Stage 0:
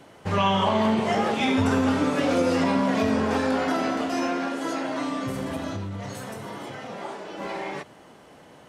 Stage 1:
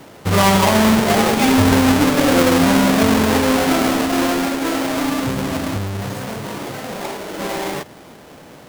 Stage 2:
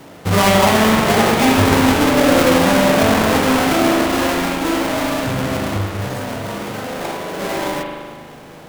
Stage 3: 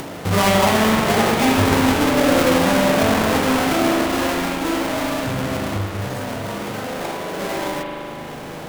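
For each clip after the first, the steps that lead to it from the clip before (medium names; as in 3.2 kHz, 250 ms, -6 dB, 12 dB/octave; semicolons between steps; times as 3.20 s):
square wave that keeps the level; trim +4 dB
spring tank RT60 1.6 s, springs 39 ms, chirp 30 ms, DRR 1 dB
upward compressor, threshold -19 dBFS; trim -3 dB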